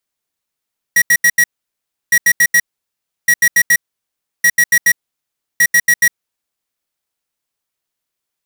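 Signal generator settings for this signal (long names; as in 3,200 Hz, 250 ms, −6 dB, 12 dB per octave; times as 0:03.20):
beeps in groups square 1,910 Hz, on 0.06 s, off 0.08 s, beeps 4, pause 0.68 s, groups 5, −9.5 dBFS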